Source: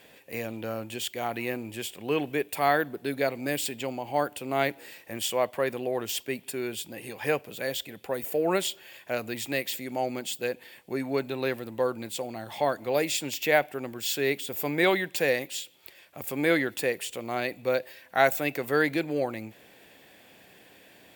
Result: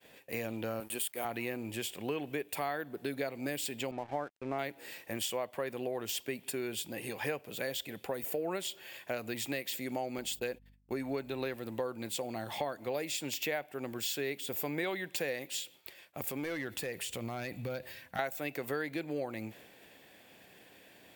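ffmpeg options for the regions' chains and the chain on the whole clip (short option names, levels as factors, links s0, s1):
-filter_complex "[0:a]asettb=1/sr,asplit=3[s0][s1][s2];[s0]atrim=end=0.804[s3];[s1]atrim=start=0.8:end=1.25,asetpts=PTS-STARTPTS,afade=t=in:d=0.004:c=qsin,afade=t=out:st=0.446:d=0.004:c=qsin,highpass=210,highshelf=f=7700:t=q:w=3:g=8,aeval=exprs='sgn(val(0))*max(abs(val(0))-0.00422,0)':c=same[s4];[s2]atrim=start=1.246[s5];[s3][s4]acrossfade=d=0.004:c1=hsin:c2=qsin[s6];[s6][s5]acrossfade=d=0.004:c1=qsin:c2=hsin,asettb=1/sr,asplit=3[s7][s8][s9];[s7]atrim=end=3.914[s10];[s8]atrim=start=3.91:end=4.59,asetpts=PTS-STARTPTS,afade=t=in:d=0.004:c=qsin,afade=t=out:st=0.676:d=0.004:c=qsin,lowpass=f=2400:w=0.5412,lowpass=f=2400:w=1.3066,agate=range=0.0224:threshold=0.0112:ratio=3:release=100:detection=peak,aeval=exprs='sgn(val(0))*max(abs(val(0))-0.00447,0)':c=same[s11];[s9]atrim=start=4.586[s12];[s10][s11]acrossfade=d=0.004:c1=hsin:c2=qsin[s13];[s13][s12]acrossfade=d=0.004:c1=qsin:c2=hsin,asettb=1/sr,asplit=3[s14][s15][s16];[s14]atrim=end=10.184[s17];[s15]atrim=start=10.18:end=11.56,asetpts=PTS-STARTPTS,afade=t=in:d=0.004:c=qsin,afade=t=out:st=1.376:d=0.004:c=qsin,agate=range=0.0158:threshold=0.00501:ratio=16:release=100:detection=peak,aeval=exprs='val(0)+0.00126*(sin(2*PI*50*n/s)+sin(2*PI*2*50*n/s)/2+sin(2*PI*3*50*n/s)/3+sin(2*PI*4*50*n/s)/4+sin(2*PI*5*50*n/s)/5)':c=same[s18];[s16]atrim=start=11.556[s19];[s17][s18]acrossfade=d=0.004:c1=hsin:c2=qsin[s20];[s20][s19]acrossfade=d=0.004:c1=qsin:c2=hsin,asettb=1/sr,asplit=3[s21][s22][s23];[s21]atrim=end=16.304[s24];[s22]atrim=start=16.3:end=18.19,asetpts=PTS-STARTPTS,afade=t=in:d=0.004:c=qsin,afade=t=out:st=1.886:d=0.004:c=qsin,acompressor=threshold=0.02:ratio=2.5:attack=3.2:release=140:knee=1:detection=peak,asubboost=boost=8.5:cutoff=190,asoftclip=type=hard:threshold=0.0376[s25];[s23]atrim=start=18.186[s26];[s24][s25]acrossfade=d=0.004:c1=hsin:c2=qsin[s27];[s27][s26]acrossfade=d=0.004:c1=qsin:c2=hsin,agate=range=0.0224:threshold=0.00316:ratio=3:detection=peak,acompressor=threshold=0.0224:ratio=5"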